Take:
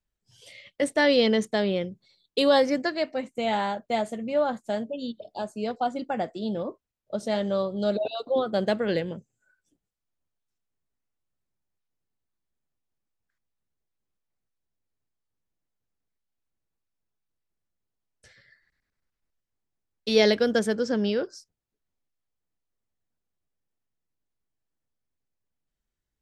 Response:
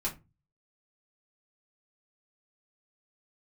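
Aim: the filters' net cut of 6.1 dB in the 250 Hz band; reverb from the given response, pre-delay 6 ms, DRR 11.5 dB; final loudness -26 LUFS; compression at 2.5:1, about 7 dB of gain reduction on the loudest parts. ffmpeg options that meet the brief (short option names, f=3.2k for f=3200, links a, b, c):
-filter_complex "[0:a]equalizer=f=250:t=o:g=-7.5,acompressor=threshold=-27dB:ratio=2.5,asplit=2[a][b];[1:a]atrim=start_sample=2205,adelay=6[c];[b][c]afir=irnorm=-1:irlink=0,volume=-15.5dB[d];[a][d]amix=inputs=2:normalize=0,volume=5.5dB"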